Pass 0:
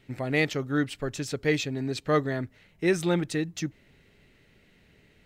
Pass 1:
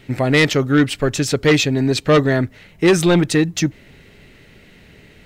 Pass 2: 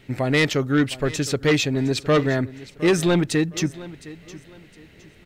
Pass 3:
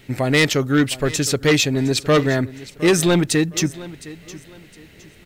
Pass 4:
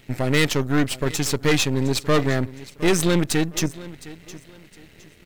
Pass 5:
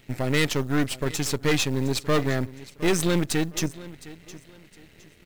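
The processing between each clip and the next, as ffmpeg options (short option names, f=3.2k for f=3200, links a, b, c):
-af "aeval=exprs='0.266*sin(PI/2*2*val(0)/0.266)':c=same,volume=4dB"
-af "aecho=1:1:712|1424|2136:0.126|0.039|0.0121,volume=-5dB"
-af "highshelf=f=5.8k:g=9,volume=2.5dB"
-af "aeval=exprs='if(lt(val(0),0),0.251*val(0),val(0))':c=same"
-af "acrusher=bits=7:mode=log:mix=0:aa=0.000001,volume=-3.5dB"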